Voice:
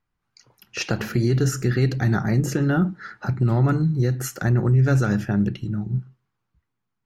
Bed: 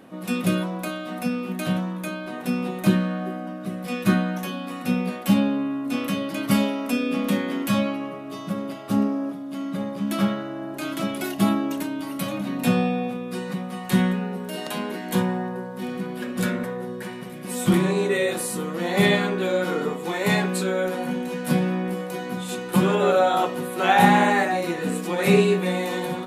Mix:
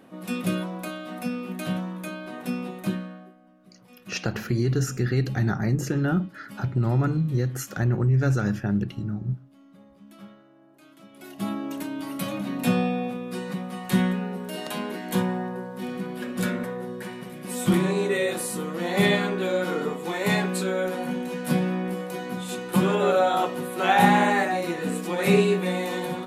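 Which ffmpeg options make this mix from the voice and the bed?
-filter_complex "[0:a]adelay=3350,volume=-3.5dB[a];[1:a]volume=17.5dB,afade=t=out:st=2.48:d=0.87:silence=0.105925,afade=t=in:st=11.11:d=0.94:silence=0.0841395[b];[a][b]amix=inputs=2:normalize=0"

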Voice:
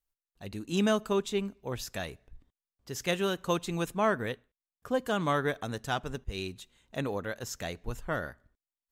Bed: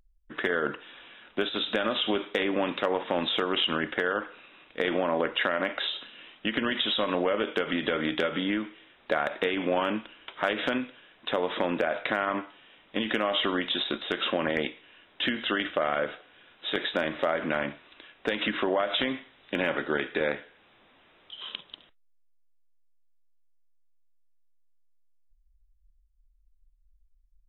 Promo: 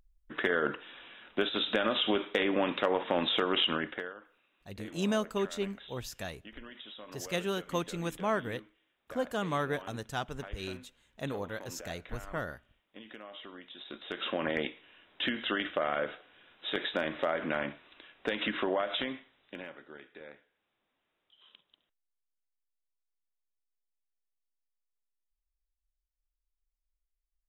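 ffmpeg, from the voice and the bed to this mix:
-filter_complex "[0:a]adelay=4250,volume=-3.5dB[a];[1:a]volume=15dB,afade=t=out:st=3.64:d=0.51:silence=0.112202,afade=t=in:st=13.77:d=0.71:silence=0.149624,afade=t=out:st=18.72:d=1.04:silence=0.133352[b];[a][b]amix=inputs=2:normalize=0"

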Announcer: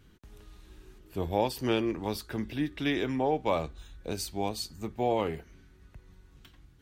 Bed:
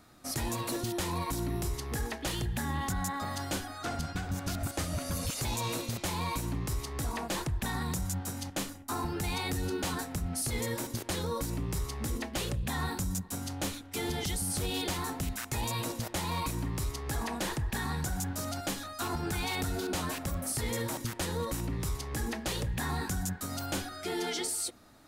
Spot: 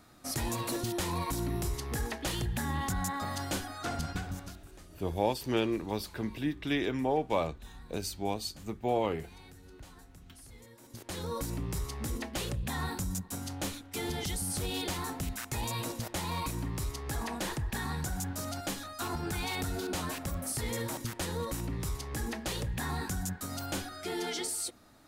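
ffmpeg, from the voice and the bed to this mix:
-filter_complex "[0:a]adelay=3850,volume=-1.5dB[a];[1:a]volume=19.5dB,afade=t=out:st=4.13:d=0.46:silence=0.0891251,afade=t=in:st=10.81:d=0.57:silence=0.105925[b];[a][b]amix=inputs=2:normalize=0"

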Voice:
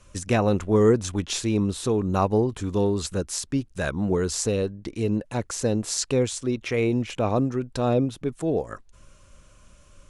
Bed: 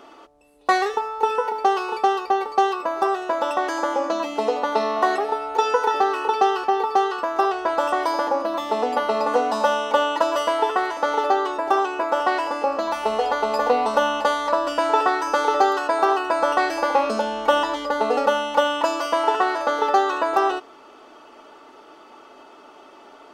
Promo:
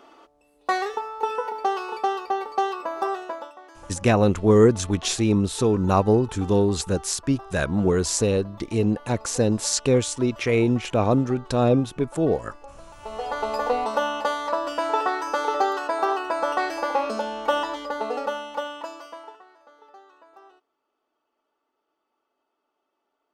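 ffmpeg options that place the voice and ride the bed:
-filter_complex "[0:a]adelay=3750,volume=3dB[a];[1:a]volume=13.5dB,afade=t=out:st=3.17:d=0.35:silence=0.125893,afade=t=in:st=12.96:d=0.47:silence=0.11885,afade=t=out:st=17.57:d=1.85:silence=0.0446684[b];[a][b]amix=inputs=2:normalize=0"

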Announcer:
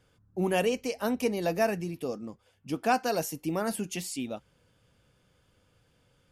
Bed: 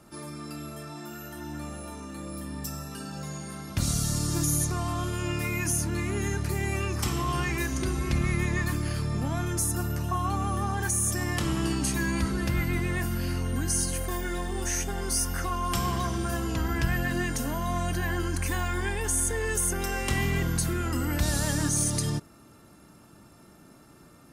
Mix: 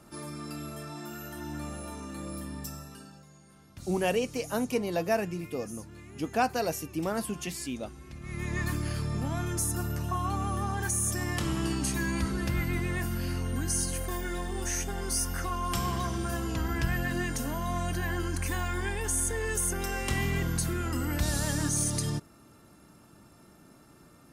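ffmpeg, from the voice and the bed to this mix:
-filter_complex "[0:a]adelay=3500,volume=-1dB[a];[1:a]volume=15.5dB,afade=t=out:st=2.3:d=0.95:silence=0.125893,afade=t=in:st=8.21:d=0.44:silence=0.158489[b];[a][b]amix=inputs=2:normalize=0"

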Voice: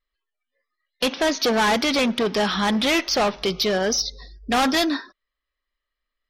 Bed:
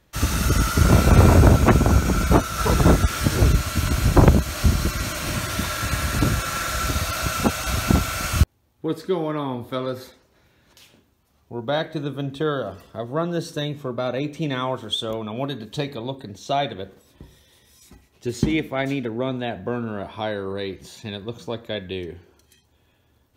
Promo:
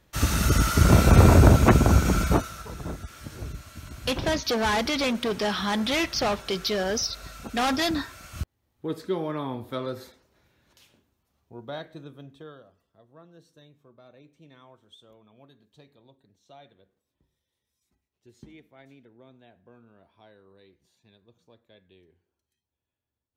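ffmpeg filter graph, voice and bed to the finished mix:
-filter_complex "[0:a]adelay=3050,volume=-5dB[a];[1:a]volume=13dB,afade=t=out:st=2.13:d=0.51:silence=0.125893,afade=t=in:st=8.32:d=0.64:silence=0.188365,afade=t=out:st=10.04:d=2.67:silence=0.0749894[b];[a][b]amix=inputs=2:normalize=0"

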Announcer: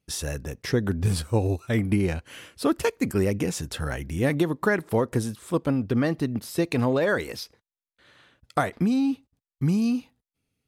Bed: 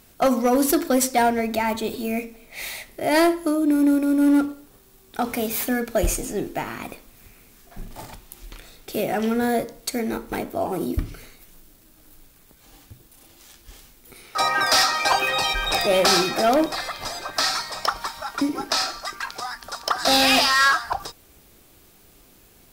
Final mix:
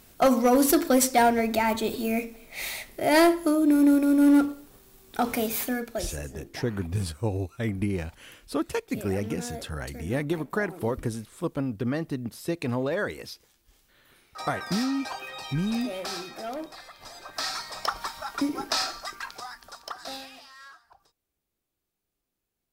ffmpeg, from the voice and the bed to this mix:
-filter_complex "[0:a]adelay=5900,volume=-5dB[a];[1:a]volume=11.5dB,afade=t=out:st=5.32:d=0.84:silence=0.16788,afade=t=in:st=16.96:d=1.09:silence=0.237137,afade=t=out:st=18.88:d=1.42:silence=0.0446684[b];[a][b]amix=inputs=2:normalize=0"

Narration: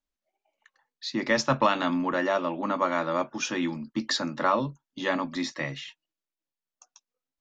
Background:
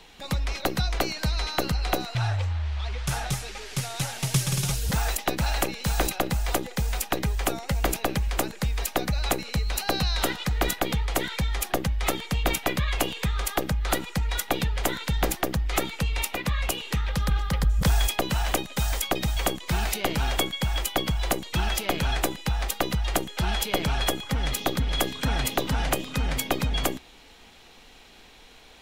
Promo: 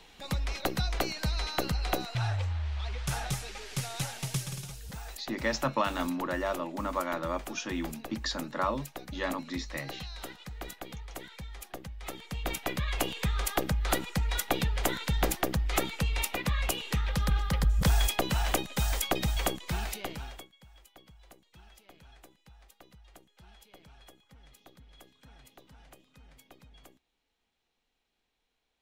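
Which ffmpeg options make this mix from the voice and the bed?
-filter_complex "[0:a]adelay=4150,volume=-6dB[a];[1:a]volume=9dB,afade=t=out:st=3.98:d=0.71:silence=0.251189,afade=t=in:st=12:d=1.33:silence=0.211349,afade=t=out:st=19.3:d=1.18:silence=0.0446684[b];[a][b]amix=inputs=2:normalize=0"

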